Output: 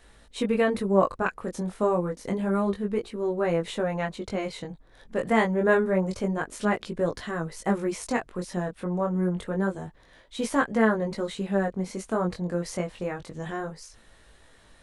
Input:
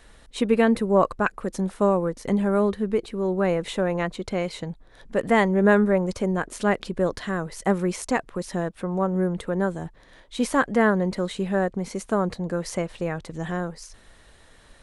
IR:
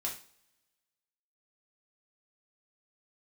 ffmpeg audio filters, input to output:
-af "flanger=delay=18:depth=4.8:speed=0.28"

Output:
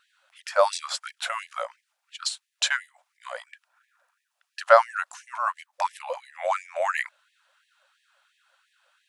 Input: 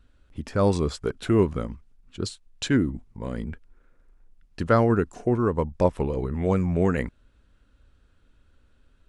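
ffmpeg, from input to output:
ffmpeg -i in.wav -filter_complex "[0:a]asettb=1/sr,asplit=3[link_01][link_02][link_03];[link_01]atrim=end=3.374[link_04];[link_02]atrim=start=3.37:end=4.67,asetpts=PTS-STARTPTS,afade=type=in:duration=0.004:curve=qsin,afade=type=out:start_time=1.296:duration=0.004:curve=qsin,bandreject=frequency=2100:width=11[link_05];[link_03]atrim=start=4.666[link_06];[link_04][link_05]acrossfade=duration=0.004:curve1=hsin:curve2=qsin[link_07];[link_07][link_06]acrossfade=duration=0.004:curve1=qsin:curve2=hsin,afftfilt=real='re*gte(b*sr/1024,510*pow(1700/510,0.5+0.5*sin(2*PI*2.9*pts/sr)))':imag='im*gte(b*sr/1024,510*pow(1700/510,0.5+0.5*sin(2*PI*2.9*pts/sr)))':win_size=1024:overlap=0.75,volume=7.5dB" out.wav

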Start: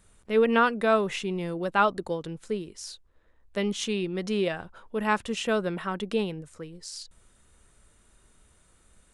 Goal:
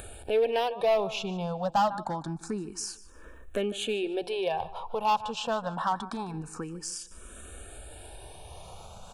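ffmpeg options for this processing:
ffmpeg -i in.wav -filter_complex "[0:a]acompressor=threshold=-36dB:ratio=2,asettb=1/sr,asplit=3[link_01][link_02][link_03];[link_01]atrim=end=4.234[link_04];[link_02]atrim=start=4.23:end=6.34,asetpts=PTS-STARTPTS,afade=type=in:duration=0.004:curve=qsin,afade=type=out:start_time=2.106:duration=0.004:curve=qsin,equalizer=frequency=200:width_type=o:width=0.33:gain=-8,equalizer=frequency=315:width_type=o:width=0.33:gain=-9,equalizer=frequency=630:width_type=o:width=0.33:gain=-4,equalizer=frequency=1000:width_type=o:width=0.33:gain=6,equalizer=frequency=6300:width_type=o:width=0.33:gain=-5[link_05];[link_03]atrim=start=6.336[link_06];[link_04][link_05]acrossfade=duration=0.004:curve1=hsin:curve2=qsin[link_07];[link_07][link_06]acrossfade=duration=0.004:curve1=qsin:curve2=hsin,acompressor=mode=upward:threshold=-36dB:ratio=2.5,asuperstop=centerf=2000:order=12:qfactor=5.7,equalizer=frequency=780:width_type=o:width=0.66:gain=12,aecho=1:1:150|300|450:0.133|0.04|0.012,volume=25.5dB,asoftclip=hard,volume=-25.5dB,asplit=2[link_08][link_09];[link_09]afreqshift=0.26[link_10];[link_08][link_10]amix=inputs=2:normalize=1,volume=6dB" out.wav

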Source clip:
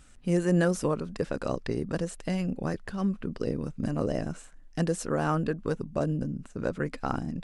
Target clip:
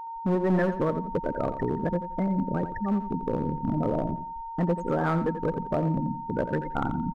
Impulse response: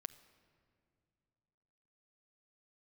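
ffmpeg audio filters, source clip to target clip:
-filter_complex "[0:a]afftfilt=real='re*gte(hypot(re,im),0.0562)':imag='im*gte(hypot(re,im),0.0562)':win_size=1024:overlap=0.75,asplit=2[link_01][link_02];[link_02]acompressor=threshold=-33dB:ratio=6,volume=-1dB[link_03];[link_01][link_03]amix=inputs=2:normalize=0,aeval=exprs='val(0)+0.0178*sin(2*PI*880*n/s)':channel_layout=same,acrossover=split=1700[link_04][link_05];[link_04]volume=19.5dB,asoftclip=hard,volume=-19.5dB[link_06];[link_05]adynamicsmooth=sensitivity=6:basefreq=3400[link_07];[link_06][link_07]amix=inputs=2:normalize=0,aecho=1:1:90|180|270:0.282|0.0733|0.0191,asetrate=45938,aresample=44100"

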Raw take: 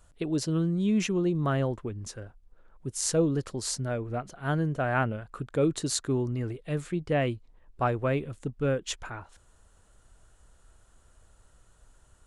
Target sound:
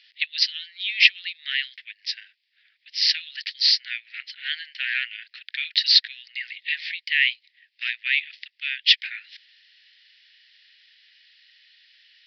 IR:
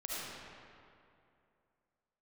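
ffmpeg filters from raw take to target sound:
-af "apsyclip=23dB,asuperpass=centerf=4100:order=20:qfactor=0.62,aresample=11025,aresample=44100,volume=-1.5dB"

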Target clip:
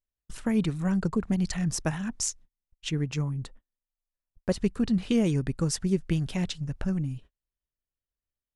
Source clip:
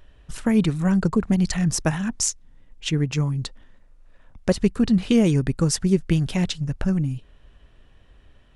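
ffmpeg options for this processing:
ffmpeg -i in.wav -filter_complex "[0:a]agate=range=-36dB:threshold=-39dB:ratio=16:detection=peak,asettb=1/sr,asplit=3[link_01][link_02][link_03];[link_01]atrim=end=3.224[link_04];[link_02]atrim=start=3.22:end=4.5,asetpts=PTS-STARTPTS,afade=type=in:duration=0.004:curve=qsin,afade=type=out:start_time=1.276:duration=0.004:curve=qsin,equalizer=frequency=4800:width=0.89:gain=-9.5[link_05];[link_03]atrim=start=4.496[link_06];[link_04][link_05]acrossfade=duration=0.004:curve1=hsin:curve2=qsin[link_07];[link_07][link_06]acrossfade=duration=0.004:curve1=qsin:curve2=hsin,volume=-6.5dB" out.wav

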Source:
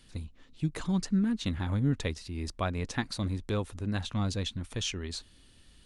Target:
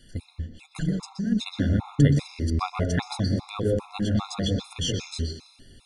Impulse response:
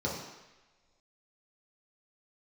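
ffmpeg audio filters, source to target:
-filter_complex "[0:a]asplit=3[link_01][link_02][link_03];[link_01]afade=type=out:start_time=0.65:duration=0.02[link_04];[link_02]acompressor=threshold=-32dB:ratio=6,afade=type=in:start_time=0.65:duration=0.02,afade=type=out:start_time=1.31:duration=0.02[link_05];[link_03]afade=type=in:start_time=1.31:duration=0.02[link_06];[link_04][link_05][link_06]amix=inputs=3:normalize=0,asplit=2[link_07][link_08];[1:a]atrim=start_sample=2205,adelay=123[link_09];[link_08][link_09]afir=irnorm=-1:irlink=0,volume=-10.5dB[link_10];[link_07][link_10]amix=inputs=2:normalize=0,afftfilt=real='re*gt(sin(2*PI*2.5*pts/sr)*(1-2*mod(floor(b*sr/1024/690),2)),0)':imag='im*gt(sin(2*PI*2.5*pts/sr)*(1-2*mod(floor(b*sr/1024/690),2)),0)':win_size=1024:overlap=0.75,volume=6dB"

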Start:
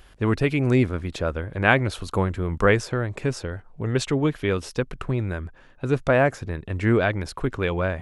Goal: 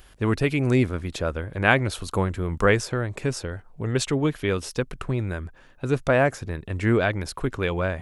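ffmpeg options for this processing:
ffmpeg -i in.wav -af "highshelf=frequency=6200:gain=8,volume=-1dB" out.wav

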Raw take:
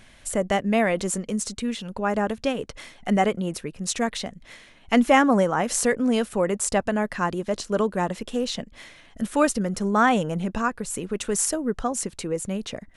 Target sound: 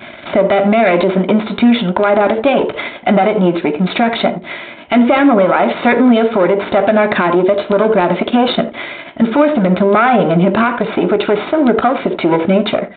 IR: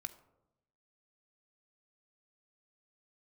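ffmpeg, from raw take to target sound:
-filter_complex "[0:a]aeval=exprs='if(lt(val(0),0),0.251*val(0),val(0))':channel_layout=same,highpass=230,equalizer=frequency=440:width_type=o:width=1.9:gain=8.5,asplit=2[link_01][link_02];[link_02]adelay=88,lowpass=frequency=1300:poles=1,volume=-18.5dB,asplit=2[link_03][link_04];[link_04]adelay=88,lowpass=frequency=1300:poles=1,volume=0.22[link_05];[link_01][link_03][link_05]amix=inputs=3:normalize=0[link_06];[1:a]atrim=start_sample=2205,afade=type=out:start_time=0.14:duration=0.01,atrim=end_sample=6615[link_07];[link_06][link_07]afir=irnorm=-1:irlink=0,acompressor=threshold=-33dB:ratio=2,alimiter=level_in=27.5dB:limit=-1dB:release=50:level=0:latency=1,volume=-1.5dB" -ar 8000 -c:a adpcm_g726 -b:a 40k

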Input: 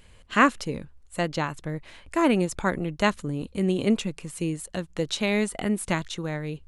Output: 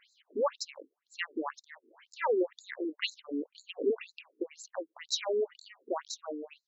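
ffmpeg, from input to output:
ffmpeg -i in.wav -af "afftfilt=real='re*between(b*sr/1024,320*pow(5500/320,0.5+0.5*sin(2*PI*2*pts/sr))/1.41,320*pow(5500/320,0.5+0.5*sin(2*PI*2*pts/sr))*1.41)':imag='im*between(b*sr/1024,320*pow(5500/320,0.5+0.5*sin(2*PI*2*pts/sr))/1.41,320*pow(5500/320,0.5+0.5*sin(2*PI*2*pts/sr))*1.41)':win_size=1024:overlap=0.75" out.wav

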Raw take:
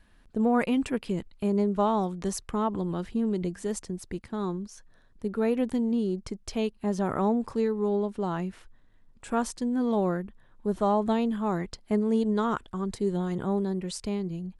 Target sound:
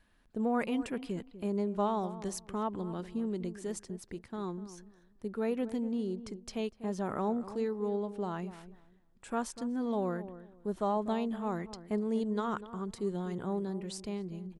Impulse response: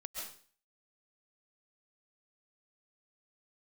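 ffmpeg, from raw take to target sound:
-filter_complex "[0:a]lowshelf=frequency=130:gain=-5.5,areverse,acompressor=mode=upward:threshold=-45dB:ratio=2.5,areverse,asplit=2[link_01][link_02];[link_02]adelay=245,lowpass=frequency=1100:poles=1,volume=-13dB,asplit=2[link_03][link_04];[link_04]adelay=245,lowpass=frequency=1100:poles=1,volume=0.23,asplit=2[link_05][link_06];[link_06]adelay=245,lowpass=frequency=1100:poles=1,volume=0.23[link_07];[link_01][link_03][link_05][link_07]amix=inputs=4:normalize=0,volume=-6dB"

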